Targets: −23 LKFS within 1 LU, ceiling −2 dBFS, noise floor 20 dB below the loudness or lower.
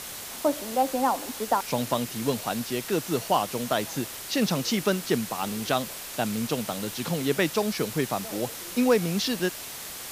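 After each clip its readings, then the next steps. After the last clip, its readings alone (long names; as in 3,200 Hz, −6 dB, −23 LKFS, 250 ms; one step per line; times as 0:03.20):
background noise floor −39 dBFS; target noise floor −48 dBFS; integrated loudness −27.5 LKFS; sample peak −8.5 dBFS; target loudness −23.0 LKFS
→ broadband denoise 9 dB, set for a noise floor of −39 dBFS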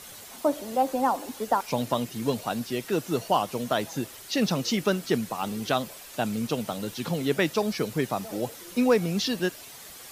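background noise floor −45 dBFS; target noise floor −48 dBFS
→ broadband denoise 6 dB, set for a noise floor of −45 dBFS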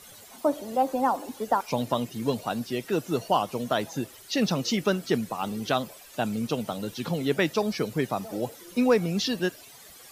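background noise floor −49 dBFS; integrated loudness −28.0 LKFS; sample peak −9.0 dBFS; target loudness −23.0 LKFS
→ level +5 dB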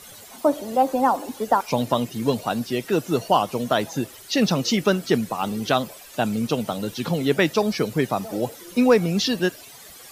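integrated loudness −23.0 LKFS; sample peak −4.0 dBFS; background noise floor −44 dBFS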